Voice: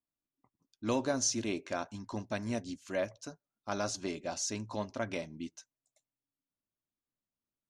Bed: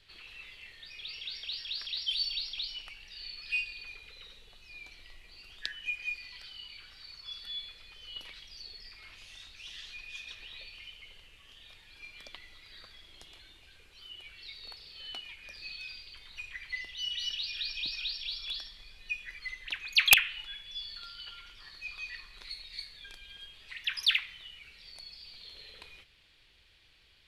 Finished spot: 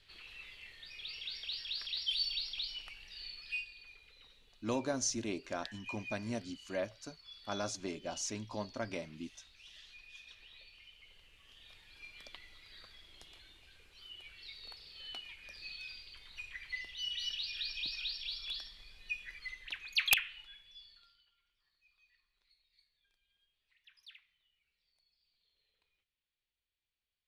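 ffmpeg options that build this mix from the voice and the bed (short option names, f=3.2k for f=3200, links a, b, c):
-filter_complex "[0:a]adelay=3800,volume=-3.5dB[a];[1:a]volume=4dB,afade=t=out:st=3.21:d=0.49:silence=0.421697,afade=t=in:st=10.88:d=0.88:silence=0.473151,afade=t=out:st=19.23:d=2.04:silence=0.0473151[b];[a][b]amix=inputs=2:normalize=0"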